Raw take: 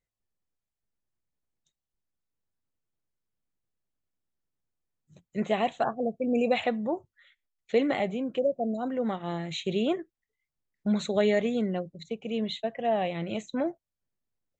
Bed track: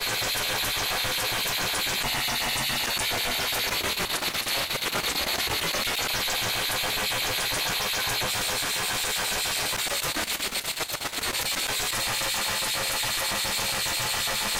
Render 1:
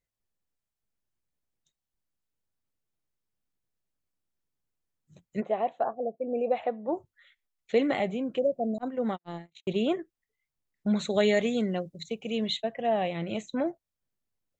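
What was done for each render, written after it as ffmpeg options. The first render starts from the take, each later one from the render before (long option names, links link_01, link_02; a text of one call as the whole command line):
ffmpeg -i in.wav -filter_complex "[0:a]asplit=3[link_01][link_02][link_03];[link_01]afade=type=out:start_time=5.4:duration=0.02[link_04];[link_02]bandpass=frequency=610:width_type=q:width=1.2,afade=type=in:start_time=5.4:duration=0.02,afade=type=out:start_time=6.87:duration=0.02[link_05];[link_03]afade=type=in:start_time=6.87:duration=0.02[link_06];[link_04][link_05][link_06]amix=inputs=3:normalize=0,asettb=1/sr,asplit=3[link_07][link_08][link_09];[link_07]atrim=end=8.784[link_10];[link_08]atrim=start=8.78:end=9.91,asetpts=PTS-STARTPTS,afade=type=in:duration=0.004:curve=qsin,afade=type=out:start_time=1.126:duration=0.004:curve=qsin,agate=range=-55dB:threshold=-32dB:ratio=16:release=100:detection=peak[link_11];[link_09]atrim=start=9.906[link_12];[link_10][link_11]acrossfade=duration=0.004:curve1=hsin:curve2=qsin[link_13];[link_13][link_12]acrossfade=duration=0.004:curve1=qsin:curve2=hsin,asettb=1/sr,asplit=3[link_14][link_15][link_16];[link_14]atrim=end=11.104[link_17];[link_15]atrim=start=11.1:end=12.57,asetpts=PTS-STARTPTS,afade=type=in:duration=0.004:curve=qsin,afade=type=out:start_time=1.466:duration=0.004:curve=qsin,highshelf=frequency=3100:gain=8.5[link_18];[link_16]atrim=start=12.566[link_19];[link_17][link_18]acrossfade=duration=0.004:curve1=hsin:curve2=qsin[link_20];[link_20][link_19]acrossfade=duration=0.004:curve1=qsin:curve2=hsin" out.wav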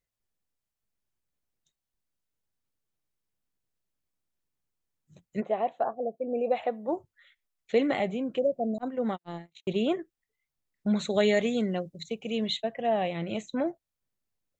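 ffmpeg -i in.wav -filter_complex "[0:a]asettb=1/sr,asplit=3[link_01][link_02][link_03];[link_01]atrim=end=6.454[link_04];[link_02]atrim=start=6.45:end=6.96,asetpts=PTS-STARTPTS,afade=type=in:duration=0.004:curve=qsin,afade=type=out:start_time=0.506:duration=0.004:curve=qsin,highshelf=frequency=3800:gain=8[link_05];[link_03]atrim=start=6.956[link_06];[link_04][link_05]acrossfade=duration=0.004:curve1=hsin:curve2=qsin[link_07];[link_07][link_06]acrossfade=duration=0.004:curve1=qsin:curve2=hsin" out.wav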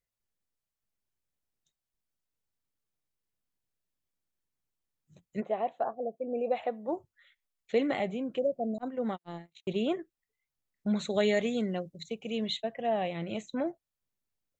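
ffmpeg -i in.wav -af "volume=-3dB" out.wav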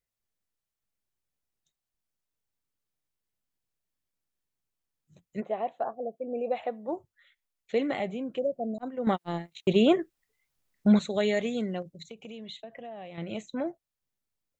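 ffmpeg -i in.wav -filter_complex "[0:a]asettb=1/sr,asplit=3[link_01][link_02][link_03];[link_01]atrim=end=11.824[link_04];[link_02]atrim=start=11.82:end=13.18,asetpts=PTS-STARTPTS,afade=type=in:duration=0.004:curve=qsin,afade=type=out:start_time=1.356:duration=0.004:curve=qsin,acompressor=threshold=-39dB:ratio=6:attack=3.2:release=140:knee=1:detection=peak[link_05];[link_03]atrim=start=13.176[link_06];[link_04][link_05]acrossfade=duration=0.004:curve1=hsin:curve2=qsin[link_07];[link_07][link_06]acrossfade=duration=0.004:curve1=qsin:curve2=hsin,asplit=3[link_08][link_09][link_10];[link_08]atrim=end=9.072[link_11];[link_09]atrim=start=9.068:end=10.992,asetpts=PTS-STARTPTS,volume=9dB[link_12];[link_10]atrim=start=10.988[link_13];[link_11][link_12]acrossfade=duration=0.004:curve1=hsin:curve2=hsin[link_14];[link_14][link_13]acrossfade=duration=0.004:curve1=hsin:curve2=hsin" out.wav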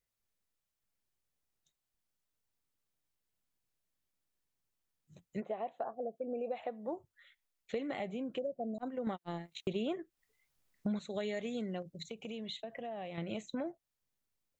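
ffmpeg -i in.wav -af "acompressor=threshold=-36dB:ratio=4" out.wav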